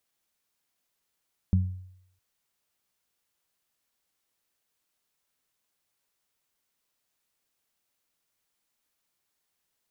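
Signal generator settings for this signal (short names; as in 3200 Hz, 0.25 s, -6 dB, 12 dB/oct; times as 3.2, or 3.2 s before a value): additive tone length 0.66 s, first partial 92.4 Hz, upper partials -3.5 dB, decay 0.72 s, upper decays 0.35 s, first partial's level -17.5 dB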